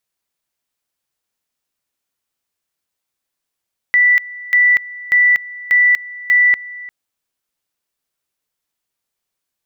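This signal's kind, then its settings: two-level tone 1970 Hz -8 dBFS, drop 20 dB, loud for 0.24 s, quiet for 0.35 s, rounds 5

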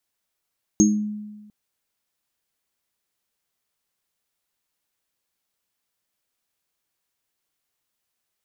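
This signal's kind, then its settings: sine partials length 0.70 s, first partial 210 Hz, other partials 313/6490 Hz, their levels 1/-2 dB, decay 1.29 s, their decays 0.35/0.25 s, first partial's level -13 dB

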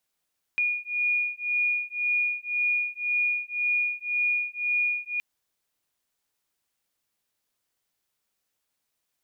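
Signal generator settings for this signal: beating tones 2440 Hz, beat 1.9 Hz, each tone -27 dBFS 4.62 s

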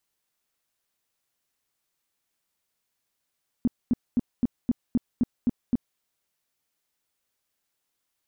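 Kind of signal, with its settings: tone bursts 242 Hz, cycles 6, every 0.26 s, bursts 9, -17.5 dBFS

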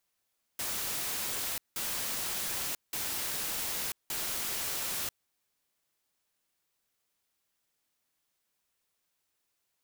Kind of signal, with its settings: noise bursts white, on 0.99 s, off 0.18 s, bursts 4, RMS -34.5 dBFS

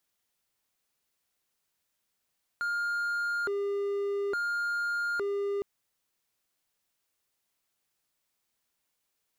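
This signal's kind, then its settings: siren hi-lo 402–1410 Hz 0.58/s triangle -26 dBFS 3.01 s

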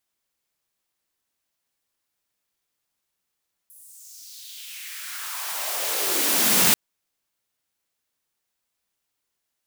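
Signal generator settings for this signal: swept filtered noise white, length 3.04 s highpass, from 11000 Hz, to 150 Hz, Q 2.6, exponential, gain ramp +35 dB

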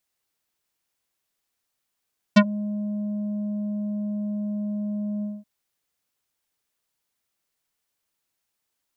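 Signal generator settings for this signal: synth note square G#3 24 dB/oct, low-pass 490 Hz, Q 1.1, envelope 4 oct, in 0.09 s, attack 13 ms, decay 0.06 s, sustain -19 dB, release 0.21 s, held 2.87 s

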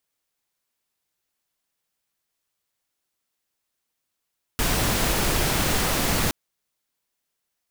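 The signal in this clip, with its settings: noise pink, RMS -22.5 dBFS 1.72 s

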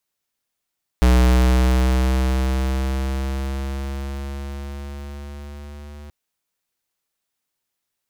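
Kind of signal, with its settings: gliding synth tone square, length 5.08 s, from 61.9 Hz, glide +3 st, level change -25.5 dB, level -12.5 dB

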